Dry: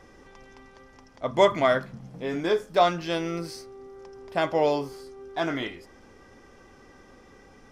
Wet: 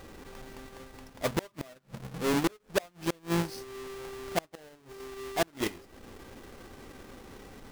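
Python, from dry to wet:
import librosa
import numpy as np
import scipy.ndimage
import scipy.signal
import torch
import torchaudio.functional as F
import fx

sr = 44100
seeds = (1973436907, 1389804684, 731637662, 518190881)

y = fx.halfwave_hold(x, sr)
y = fx.transient(y, sr, attack_db=-5, sustain_db=-9)
y = fx.gate_flip(y, sr, shuts_db=-17.0, range_db=-33)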